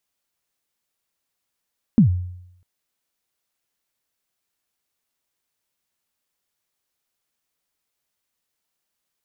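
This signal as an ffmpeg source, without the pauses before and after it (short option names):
-f lavfi -i "aevalsrc='0.447*pow(10,-3*t/0.78)*sin(2*PI*(250*0.107/log(90/250)*(exp(log(90/250)*min(t,0.107)/0.107)-1)+90*max(t-0.107,0)))':d=0.65:s=44100"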